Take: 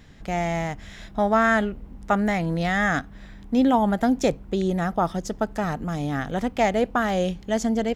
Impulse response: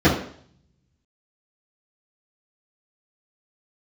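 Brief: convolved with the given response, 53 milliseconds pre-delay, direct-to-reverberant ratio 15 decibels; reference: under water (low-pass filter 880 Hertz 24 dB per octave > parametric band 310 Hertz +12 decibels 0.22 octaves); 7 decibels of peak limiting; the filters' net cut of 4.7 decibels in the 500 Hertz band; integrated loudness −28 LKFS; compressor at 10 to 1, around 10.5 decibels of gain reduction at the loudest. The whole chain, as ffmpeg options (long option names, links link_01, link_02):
-filter_complex "[0:a]equalizer=frequency=500:width_type=o:gain=-7,acompressor=threshold=-28dB:ratio=10,alimiter=level_in=0.5dB:limit=-24dB:level=0:latency=1,volume=-0.5dB,asplit=2[link_01][link_02];[1:a]atrim=start_sample=2205,adelay=53[link_03];[link_02][link_03]afir=irnorm=-1:irlink=0,volume=-37dB[link_04];[link_01][link_04]amix=inputs=2:normalize=0,lowpass=frequency=880:width=0.5412,lowpass=frequency=880:width=1.3066,equalizer=frequency=310:width_type=o:width=0.22:gain=12,volume=6dB"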